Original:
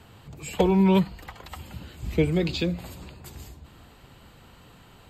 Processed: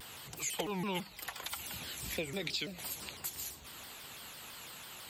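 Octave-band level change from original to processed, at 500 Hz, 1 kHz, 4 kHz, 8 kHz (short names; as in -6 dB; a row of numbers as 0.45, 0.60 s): -15.5, -10.5, -1.5, +6.0 dB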